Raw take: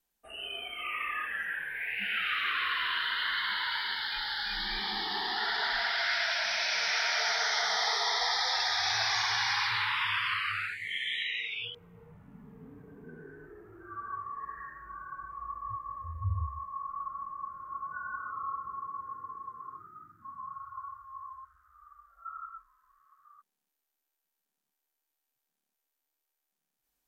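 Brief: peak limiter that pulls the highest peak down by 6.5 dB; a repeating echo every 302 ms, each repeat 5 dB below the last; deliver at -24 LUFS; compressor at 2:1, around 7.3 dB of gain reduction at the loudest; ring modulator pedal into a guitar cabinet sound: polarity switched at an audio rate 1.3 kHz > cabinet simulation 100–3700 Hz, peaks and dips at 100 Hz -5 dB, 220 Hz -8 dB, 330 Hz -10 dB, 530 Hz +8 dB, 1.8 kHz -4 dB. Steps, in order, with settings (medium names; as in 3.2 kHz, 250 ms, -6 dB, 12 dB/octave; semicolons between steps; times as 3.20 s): compression 2:1, threshold -40 dBFS; peak limiter -30.5 dBFS; feedback delay 302 ms, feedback 56%, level -5 dB; polarity switched at an audio rate 1.3 kHz; cabinet simulation 100–3700 Hz, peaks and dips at 100 Hz -5 dB, 220 Hz -8 dB, 330 Hz -10 dB, 530 Hz +8 dB, 1.8 kHz -4 dB; trim +16.5 dB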